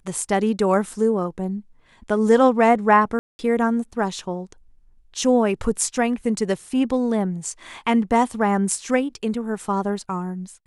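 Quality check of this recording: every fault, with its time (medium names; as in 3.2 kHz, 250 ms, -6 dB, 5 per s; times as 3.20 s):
3.19–3.39 s: dropout 200 ms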